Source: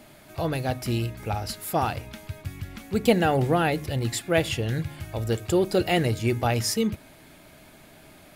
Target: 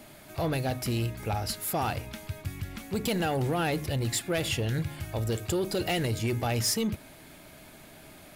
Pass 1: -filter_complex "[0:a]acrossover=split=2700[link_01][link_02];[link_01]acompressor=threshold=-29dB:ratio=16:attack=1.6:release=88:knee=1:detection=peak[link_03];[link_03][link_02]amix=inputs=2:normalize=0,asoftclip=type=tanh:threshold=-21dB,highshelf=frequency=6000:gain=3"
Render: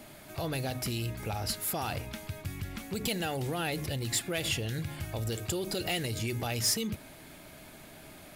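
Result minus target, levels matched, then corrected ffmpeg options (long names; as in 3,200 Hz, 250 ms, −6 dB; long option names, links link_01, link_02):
downward compressor: peak gain reduction +7 dB
-filter_complex "[0:a]acrossover=split=2700[link_01][link_02];[link_01]acompressor=threshold=-21.5dB:ratio=16:attack=1.6:release=88:knee=1:detection=peak[link_03];[link_03][link_02]amix=inputs=2:normalize=0,asoftclip=type=tanh:threshold=-21dB,highshelf=frequency=6000:gain=3"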